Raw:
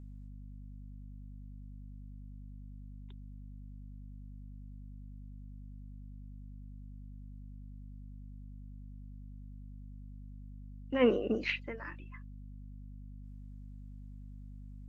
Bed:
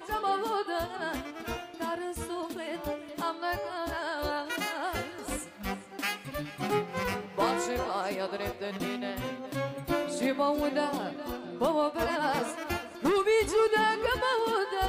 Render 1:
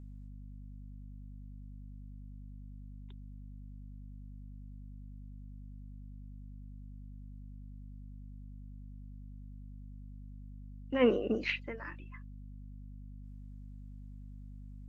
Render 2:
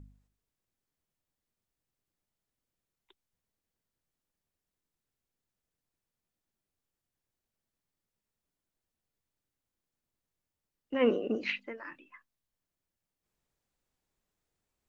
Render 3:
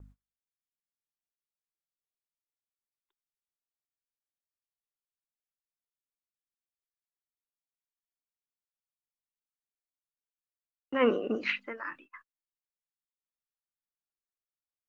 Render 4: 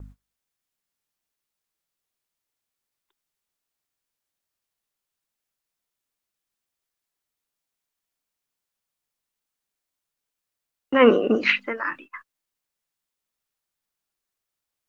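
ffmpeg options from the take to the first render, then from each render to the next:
-af anull
-af "bandreject=f=50:t=h:w=4,bandreject=f=100:t=h:w=4,bandreject=f=150:t=h:w=4,bandreject=f=200:t=h:w=4,bandreject=f=250:t=h:w=4"
-af "agate=range=-26dB:threshold=-57dB:ratio=16:detection=peak,equalizer=f=1.3k:t=o:w=0.96:g=10.5"
-af "volume=11dB,alimiter=limit=-3dB:level=0:latency=1"

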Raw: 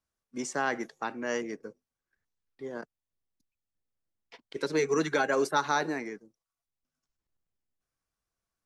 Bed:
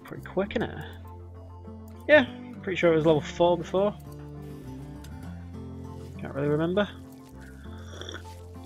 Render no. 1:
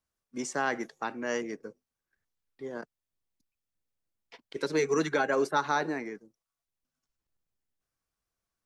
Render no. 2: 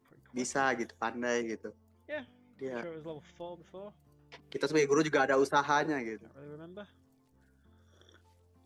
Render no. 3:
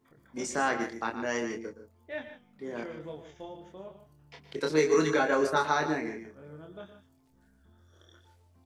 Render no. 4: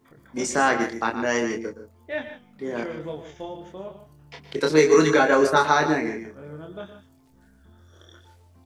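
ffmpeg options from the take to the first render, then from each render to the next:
-filter_complex "[0:a]asettb=1/sr,asplit=3[a][b][c];[a]atrim=end=5.094[d];[b]atrim=start=5.09:end=6.15,asetpts=PTS-STARTPTS,afade=t=in:d=0.004:c=qsin,afade=t=out:st=1.056:d=0.004:c=qsin,highshelf=f=4.3k:g=-7[e];[c]atrim=start=6.146[f];[d][e]acrossfade=d=0.004:c1=hsin:c2=qsin[g];[g][f]acrossfade=d=0.004:c1=qsin:c2=hsin"
-filter_complex "[1:a]volume=-22dB[a];[0:a][a]amix=inputs=2:normalize=0"
-filter_complex "[0:a]asplit=2[a][b];[b]adelay=26,volume=-4dB[c];[a][c]amix=inputs=2:normalize=0,asplit=2[d][e];[e]aecho=0:1:116.6|151.6:0.251|0.251[f];[d][f]amix=inputs=2:normalize=0"
-af "volume=8dB"

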